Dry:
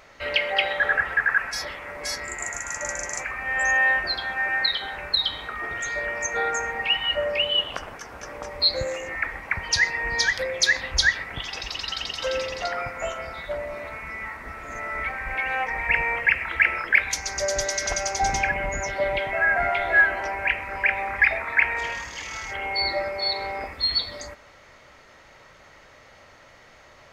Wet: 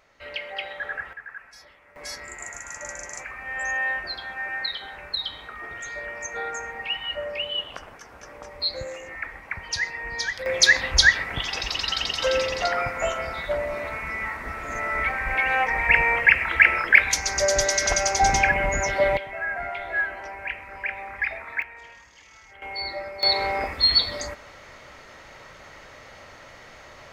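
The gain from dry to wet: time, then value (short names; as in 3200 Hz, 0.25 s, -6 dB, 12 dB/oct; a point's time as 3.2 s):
-10 dB
from 1.13 s -18.5 dB
from 1.96 s -6 dB
from 10.46 s +4 dB
from 19.17 s -8 dB
from 21.62 s -16.5 dB
from 22.62 s -6.5 dB
from 23.23 s +5 dB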